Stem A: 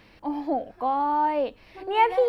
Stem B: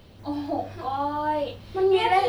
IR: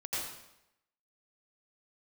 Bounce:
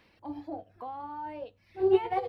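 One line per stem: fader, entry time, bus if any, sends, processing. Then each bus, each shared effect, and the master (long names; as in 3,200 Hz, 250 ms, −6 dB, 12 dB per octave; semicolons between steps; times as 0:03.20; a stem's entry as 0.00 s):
−8.0 dB, 0.00 s, no send, reverb reduction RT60 0.86 s; downward compressor 3 to 1, threshold −31 dBFS, peak gain reduction 12 dB
+1.5 dB, 0.4 ms, polarity flipped, no send, spectral tilt −3.5 dB per octave; notch filter 7,200 Hz, Q 15; expander for the loud parts 2.5 to 1, over −30 dBFS; automatic ducking −6 dB, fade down 0.85 s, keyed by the first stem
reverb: not used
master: high-pass filter 180 Hz 6 dB per octave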